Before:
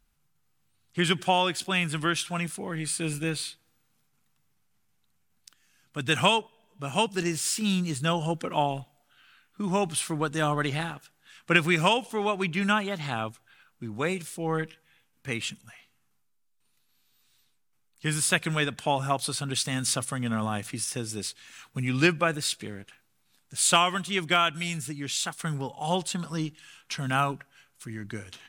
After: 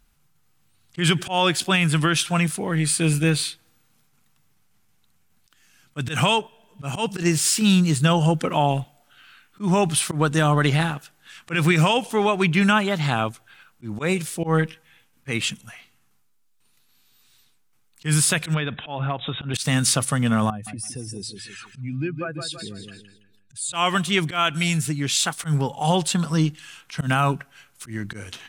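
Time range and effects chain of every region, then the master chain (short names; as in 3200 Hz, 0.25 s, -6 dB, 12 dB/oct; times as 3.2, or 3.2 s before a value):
18.54–19.54 brick-wall FIR low-pass 3900 Hz + compressor 4:1, threshold -31 dBFS
20.5–23.73 spectral contrast raised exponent 1.9 + feedback echo 0.164 s, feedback 33%, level -11 dB + compressor 2:1, threshold -44 dBFS
whole clip: limiter -16.5 dBFS; dynamic EQ 150 Hz, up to +5 dB, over -44 dBFS, Q 3.3; auto swell 0.102 s; gain +8 dB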